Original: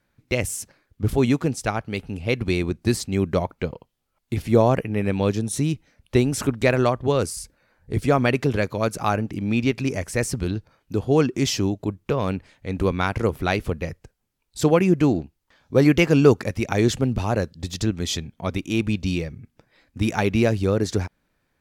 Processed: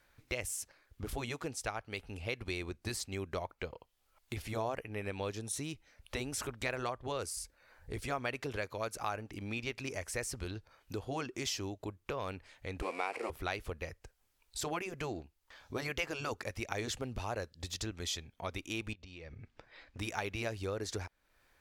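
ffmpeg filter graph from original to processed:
ffmpeg -i in.wav -filter_complex "[0:a]asettb=1/sr,asplit=3[link_01][link_02][link_03];[link_01]atrim=end=12.824[link_04];[link_02]atrim=start=12.82:end=13.3,asetpts=PTS-STARTPTS,afade=type=in:duration=0.004:curve=qsin,afade=type=out:start_time=0.476:duration=0.004:curve=qsin,aeval=exprs='val(0)+0.5*0.0422*sgn(val(0))':channel_layout=same,highpass=frequency=250:width=0.5412,highpass=frequency=250:width=1.3066,equalizer=frequency=460:width_type=q:width=4:gain=8,equalizer=frequency=760:width_type=q:width=4:gain=6,equalizer=frequency=1500:width_type=q:width=4:gain=-7,equalizer=frequency=2400:width_type=q:width=4:gain=8,equalizer=frequency=3500:width_type=q:width=4:gain=-9,equalizer=frequency=6300:width_type=q:width=4:gain=-9,lowpass=frequency=9600:width=0.5412,lowpass=frequency=9600:width=1.3066[link_05];[link_03]atrim=start=13.296[link_06];[link_04][link_05]acrossfade=duration=0.004:curve1=hsin:curve2=qsin[link_07];[link_07][link_06]acrossfade=duration=0.004:curve1=qsin:curve2=hsin,asettb=1/sr,asplit=3[link_08][link_09][link_10];[link_08]atrim=end=18.934[link_11];[link_09]atrim=start=18.93:end=19.99,asetpts=PTS-STARTPTS,afade=type=in:duration=0.004:curve=qsin,afade=type=out:start_time=1.056:duration=0.004:curve=qsin,lowpass=4500,acompressor=threshold=-37dB:ratio=16:attack=3.2:release=140:knee=1:detection=peak[link_12];[link_10]atrim=start=19.986[link_13];[link_11][link_12]acrossfade=duration=0.004:curve1=hsin:curve2=qsin[link_14];[link_14][link_13]acrossfade=duration=0.004:curve1=qsin:curve2=hsin,afftfilt=real='re*lt(hypot(re,im),1.12)':imag='im*lt(hypot(re,im),1.12)':win_size=1024:overlap=0.75,equalizer=frequency=180:width=0.69:gain=-14,acompressor=threshold=-52dB:ratio=2,volume=4.5dB" out.wav

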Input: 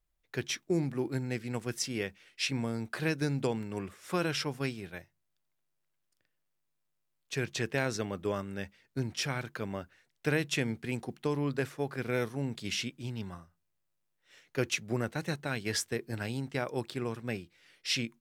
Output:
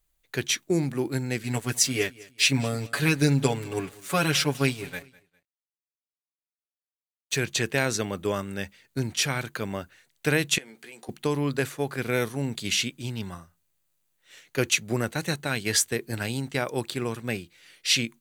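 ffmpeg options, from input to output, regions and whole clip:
ffmpeg -i in.wav -filter_complex "[0:a]asettb=1/sr,asplit=3[link_01][link_02][link_03];[link_01]atrim=end=1.434[link_04];[link_02]atrim=start=1.43:end=7.37,asetpts=PTS-STARTPTS,afade=type=in:duration=0.004:curve=qsin,afade=type=out:start_time=5.936:duration=0.004:curve=qsin,aecho=1:1:7.1:0.89,atrim=end_sample=261954,aeval=exprs='sgn(val(0))*max(abs(val(0))-0.00224,0)':channel_layout=same,aecho=1:1:202|404:0.0841|0.0269,atrim=end_sample=261954[link_05];[link_03]atrim=start=7.366[link_06];[link_04][link_05]acrossfade=duration=0.004:curve1=hsin:curve2=qsin[link_07];[link_07][link_06]acrossfade=duration=0.004:curve1=qsin:curve2=hsin,asettb=1/sr,asplit=3[link_08][link_09][link_10];[link_08]atrim=end=10.584[link_11];[link_09]atrim=start=10.58:end=11.09,asetpts=PTS-STARTPTS,afade=type=in:duration=0.004:curve=qsin,afade=type=out:start_time=0.506:duration=0.004:curve=qsin,highpass=370,acompressor=threshold=-51dB:ratio=4:attack=3.2:release=140:knee=1:detection=peak,asplit=2[link_12][link_13];[link_13]adelay=14,volume=-7dB[link_14];[link_12][link_14]amix=inputs=2:normalize=0,atrim=end_sample=22491[link_15];[link_10]atrim=start=11.086[link_16];[link_11][link_15]acrossfade=duration=0.004:curve1=hsin:curve2=qsin[link_17];[link_17][link_16]acrossfade=duration=0.004:curve1=qsin:curve2=hsin,highshelf=frequency=3300:gain=9,bandreject=frequency=5300:width=8.4,volume=5dB" out.wav

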